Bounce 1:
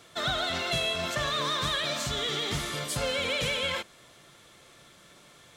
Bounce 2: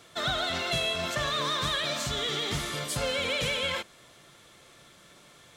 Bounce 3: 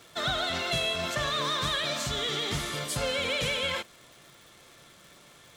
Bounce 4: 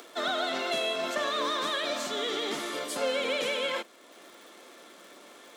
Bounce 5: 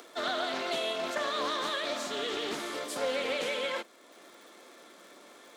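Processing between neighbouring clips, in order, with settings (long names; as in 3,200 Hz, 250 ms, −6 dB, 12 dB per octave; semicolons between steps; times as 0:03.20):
no processing that can be heard
surface crackle 260 per second −44 dBFS
Butterworth high-pass 240 Hz 36 dB per octave; tilt shelving filter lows +4 dB, about 1,300 Hz; upward compression, threshold −44 dBFS
parametric band 2,900 Hz −4 dB 0.26 octaves; highs frequency-modulated by the lows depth 0.21 ms; level −2 dB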